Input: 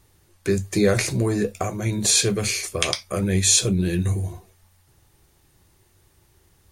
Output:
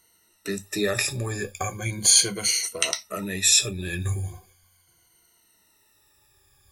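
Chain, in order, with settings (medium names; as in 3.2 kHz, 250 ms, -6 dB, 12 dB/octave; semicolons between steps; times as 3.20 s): drifting ripple filter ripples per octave 1.9, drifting -0.38 Hz, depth 19 dB; tilt shelf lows -5 dB, about 820 Hz; trim -7.5 dB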